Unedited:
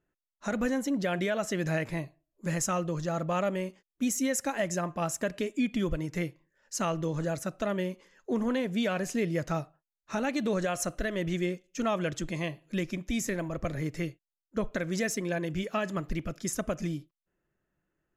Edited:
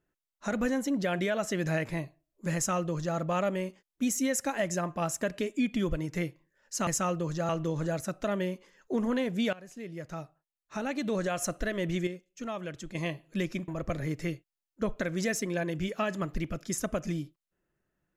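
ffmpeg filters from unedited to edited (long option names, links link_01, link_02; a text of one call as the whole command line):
ffmpeg -i in.wav -filter_complex "[0:a]asplit=7[link_01][link_02][link_03][link_04][link_05][link_06][link_07];[link_01]atrim=end=6.872[link_08];[link_02]atrim=start=2.548:end=3.172[link_09];[link_03]atrim=start=6.868:end=8.91,asetpts=PTS-STARTPTS,afade=type=out:start_time=2.038:duration=0.004:curve=hsin:silence=0.105925[link_10];[link_04]atrim=start=8.91:end=11.452,asetpts=PTS-STARTPTS,afade=type=in:duration=1.98:silence=0.105925[link_11];[link_05]atrim=start=11.448:end=12.332,asetpts=PTS-STARTPTS,volume=-7.5dB[link_12];[link_06]atrim=start=12.328:end=13.062[link_13];[link_07]atrim=start=13.428[link_14];[link_08][link_09]acrossfade=duration=0.004:curve1=hsin:curve2=hsin[link_15];[link_10][link_11]concat=n=2:v=0:a=1[link_16];[link_15][link_16]acrossfade=duration=0.004:curve1=hsin:curve2=hsin[link_17];[link_17][link_12]acrossfade=duration=0.004:curve1=hsin:curve2=hsin[link_18];[link_18][link_13]acrossfade=duration=0.004:curve1=hsin:curve2=hsin[link_19];[link_19][link_14]acrossfade=duration=0.004:curve1=hsin:curve2=hsin" out.wav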